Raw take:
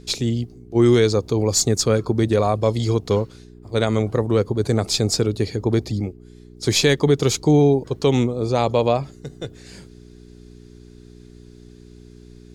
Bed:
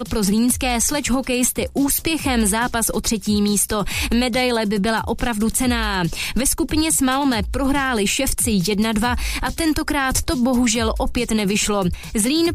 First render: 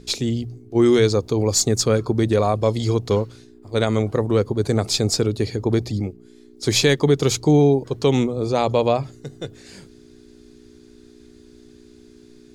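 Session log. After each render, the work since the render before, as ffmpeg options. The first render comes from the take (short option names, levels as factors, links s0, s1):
-af "bandreject=f=60:t=h:w=4,bandreject=f=120:t=h:w=4,bandreject=f=180:t=h:w=4"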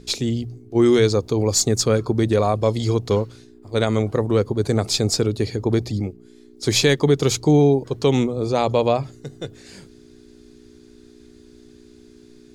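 -af anull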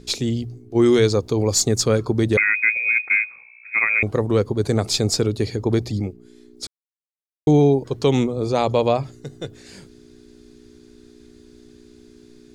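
-filter_complex "[0:a]asettb=1/sr,asplit=3[s0][s1][s2];[s0]atrim=end=2.374[s3];[s1]atrim=start=2.37:end=4.03,asetpts=PTS-STARTPTS,afade=t=in:d=0.004:c=qsin,afade=t=out:st=1.656:d=0.004:c=qsin,lowpass=f=2200:t=q:w=0.5098,lowpass=f=2200:t=q:w=0.6013,lowpass=f=2200:t=q:w=0.9,lowpass=f=2200:t=q:w=2.563,afreqshift=-2600[s4];[s2]atrim=start=4.026[s5];[s3][s4]acrossfade=d=0.004:c1=hsin:c2=qsin[s6];[s6][s5]acrossfade=d=0.004:c1=qsin:c2=hsin,asplit=3[s7][s8][s9];[s7]atrim=end=6.67,asetpts=PTS-STARTPTS,afade=t=out:st=6.666:d=0.004:c=hsin[s10];[s8]atrim=start=6.67:end=7.47,asetpts=PTS-STARTPTS,volume=0[s11];[s9]atrim=start=7.47,asetpts=PTS-STARTPTS,afade=t=in:d=0.004:c=hsin[s12];[s10][s11][s12]concat=n=3:v=0:a=1"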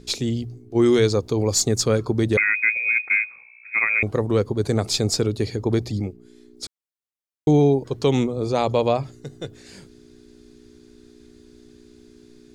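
-af "volume=0.841"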